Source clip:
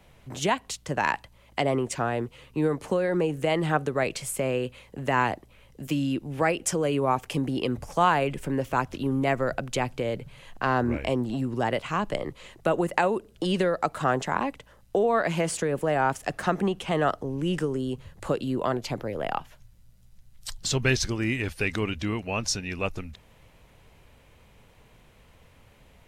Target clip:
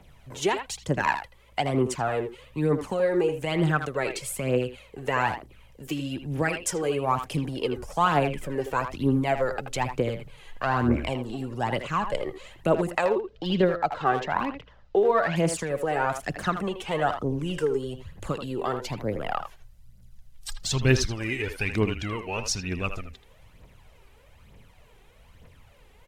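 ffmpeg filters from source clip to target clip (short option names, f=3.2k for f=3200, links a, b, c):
-filter_complex "[0:a]asettb=1/sr,asplit=3[a][b][c];[a]atrim=end=13.054[d];[b]atrim=start=13.05:end=15.36,asetpts=PTS-STARTPTS,afade=t=in:d=0.004:c=qsin,afade=t=out:st=2.306:d=0.004:c=qsin,lowpass=f=5k:w=0.5412,lowpass=f=5k:w=1.3066[e];[c]atrim=start=15.356[f];[d][e]acrossfade=d=0.004:c1=hsin:c2=qsin[g];[g][f]acrossfade=d=0.004:c1=qsin:c2=hsin,aphaser=in_gain=1:out_gain=1:delay=2.7:decay=0.6:speed=1.1:type=triangular,asplit=2[h][i];[i]adelay=80,highpass=300,lowpass=3.4k,asoftclip=type=hard:threshold=-15dB,volume=-8dB[j];[h][j]amix=inputs=2:normalize=0,volume=-2.5dB"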